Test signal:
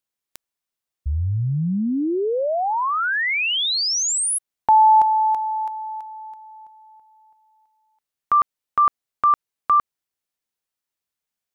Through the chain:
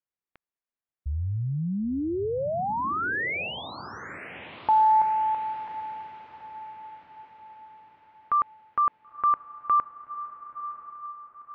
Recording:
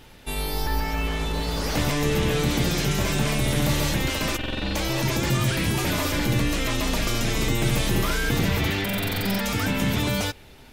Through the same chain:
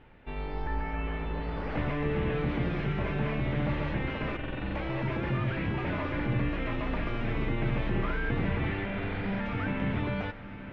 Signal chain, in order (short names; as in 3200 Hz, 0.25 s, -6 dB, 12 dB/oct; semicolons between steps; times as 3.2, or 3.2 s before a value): LPF 2400 Hz 24 dB/oct; on a send: diffused feedback echo 0.989 s, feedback 46%, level -12.5 dB; on the sum: gain -6.5 dB